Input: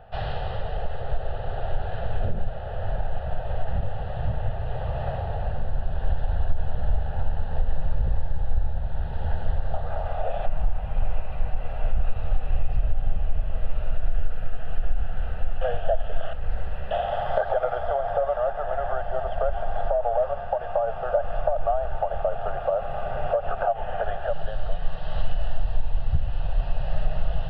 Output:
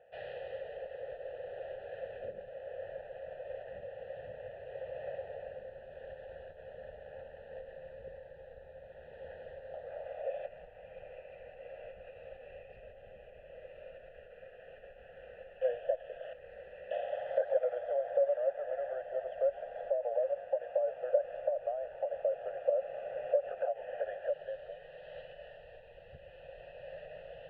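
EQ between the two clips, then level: vowel filter e; 0.0 dB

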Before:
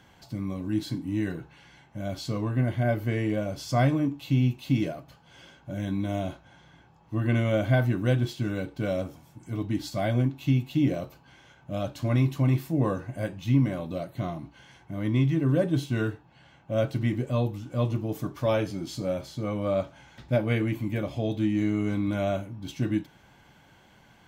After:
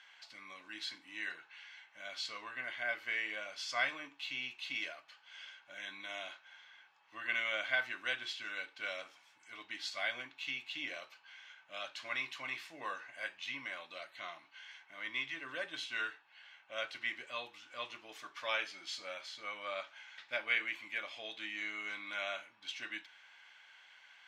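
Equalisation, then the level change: ladder band-pass 2.6 kHz, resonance 20%; +13.5 dB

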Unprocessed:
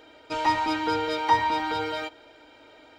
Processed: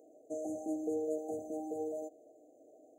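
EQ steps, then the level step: high-pass 270 Hz 12 dB/octave; brick-wall FIR band-stop 780–6100 Hz; -4.5 dB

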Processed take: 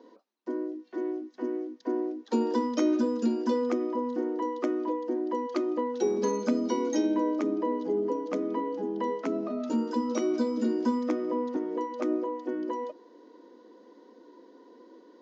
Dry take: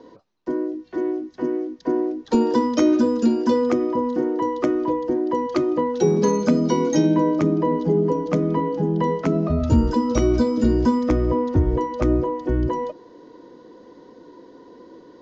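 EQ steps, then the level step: brick-wall FIR high-pass 200 Hz; -8.0 dB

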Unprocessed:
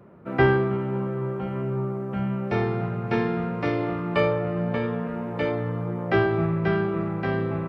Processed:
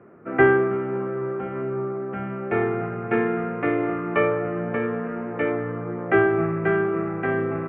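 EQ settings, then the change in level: distance through air 440 m; cabinet simulation 120–2500 Hz, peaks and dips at 130 Hz -6 dB, 190 Hz -8 dB, 570 Hz -7 dB, 940 Hz -10 dB; bass shelf 320 Hz -7.5 dB; +9.0 dB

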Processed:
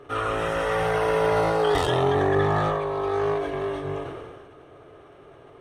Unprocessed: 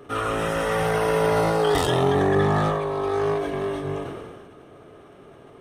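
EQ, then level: peaking EQ 210 Hz -15 dB 0.48 oct; treble shelf 7.2 kHz -11.5 dB; band-stop 5.1 kHz, Q 30; 0.0 dB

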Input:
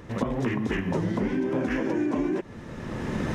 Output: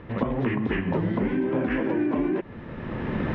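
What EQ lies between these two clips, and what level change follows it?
low-pass 3.2 kHz 24 dB/octave; +1.5 dB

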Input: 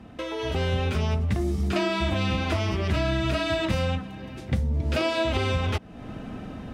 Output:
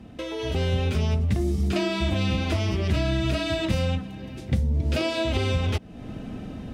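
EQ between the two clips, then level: peaking EQ 1.2 kHz -7 dB 1.8 oct; +2.0 dB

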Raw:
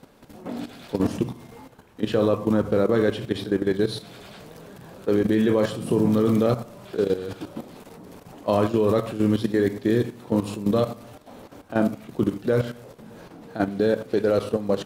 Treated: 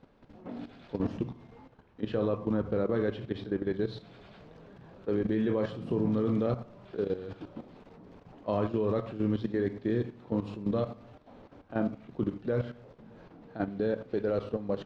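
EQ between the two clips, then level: distance through air 200 m; bass shelf 67 Hz +7.5 dB; -8.5 dB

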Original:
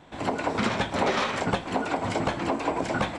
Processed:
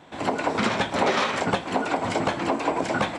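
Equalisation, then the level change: high-pass 150 Hz 6 dB/octave; +3.0 dB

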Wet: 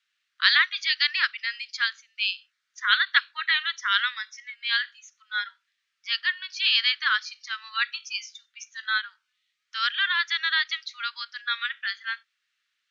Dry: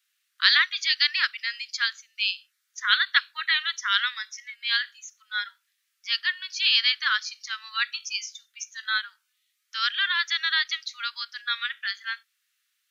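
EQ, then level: distance through air 130 m; +2.0 dB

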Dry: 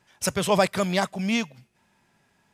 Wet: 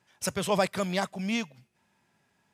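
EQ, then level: high-pass 61 Hz; -5.0 dB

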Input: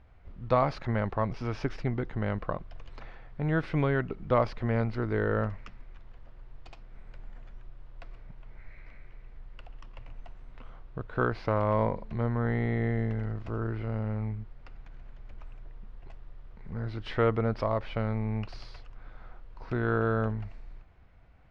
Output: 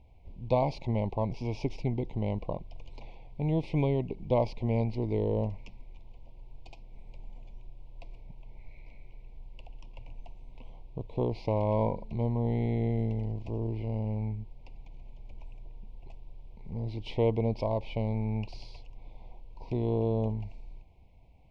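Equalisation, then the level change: elliptic band-stop 950–2300 Hz, stop band 50 dB; 0.0 dB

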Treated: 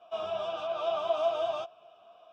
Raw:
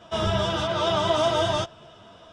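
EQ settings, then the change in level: vowel filter a; treble shelf 3.4 kHz +7 dB; 0.0 dB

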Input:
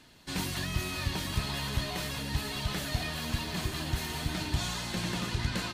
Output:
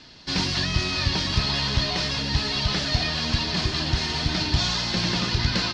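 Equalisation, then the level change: resonant low-pass 5.1 kHz, resonance Q 3.7; distance through air 63 m; +7.5 dB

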